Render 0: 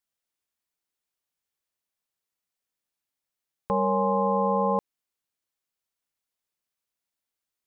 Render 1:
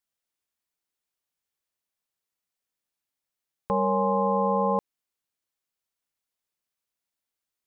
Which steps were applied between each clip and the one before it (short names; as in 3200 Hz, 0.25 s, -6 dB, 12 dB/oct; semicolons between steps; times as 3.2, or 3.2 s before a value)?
nothing audible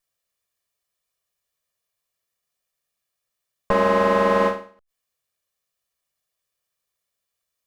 minimum comb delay 1.7 ms; ending taper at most 140 dB/s; gain +7.5 dB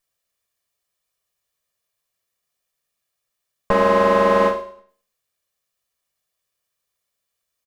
feedback echo 0.11 s, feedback 29%, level -15.5 dB; gain +2 dB